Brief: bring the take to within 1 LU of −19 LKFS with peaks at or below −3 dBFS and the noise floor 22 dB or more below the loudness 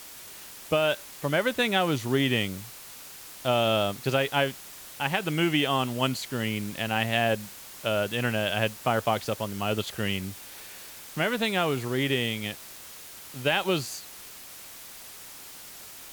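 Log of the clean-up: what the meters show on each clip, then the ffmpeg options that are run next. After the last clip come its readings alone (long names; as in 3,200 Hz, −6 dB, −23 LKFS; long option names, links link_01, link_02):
background noise floor −45 dBFS; target noise floor −49 dBFS; integrated loudness −27.0 LKFS; sample peak −9.5 dBFS; target loudness −19.0 LKFS
→ -af "afftdn=noise_reduction=6:noise_floor=-45"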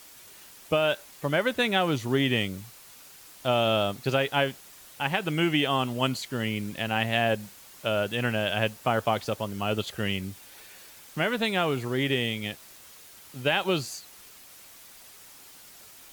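background noise floor −50 dBFS; integrated loudness −27.0 LKFS; sample peak −9.5 dBFS; target loudness −19.0 LKFS
→ -af "volume=8dB,alimiter=limit=-3dB:level=0:latency=1"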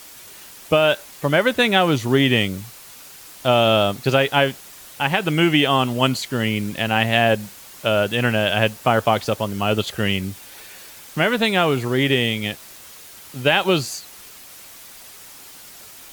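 integrated loudness −19.5 LKFS; sample peak −3.0 dBFS; background noise floor −42 dBFS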